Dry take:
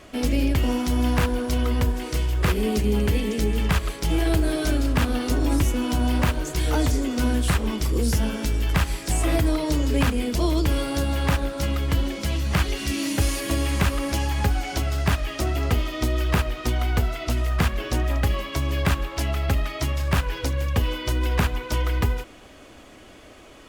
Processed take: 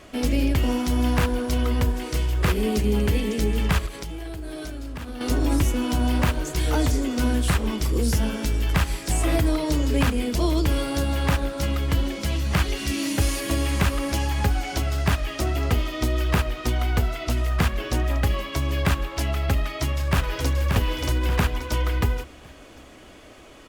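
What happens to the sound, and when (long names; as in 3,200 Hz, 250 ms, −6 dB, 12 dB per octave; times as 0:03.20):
0:03.86–0:05.21: downward compressor 16 to 1, threshold −29 dBFS
0:19.60–0:20.53: delay throw 580 ms, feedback 40%, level −4.5 dB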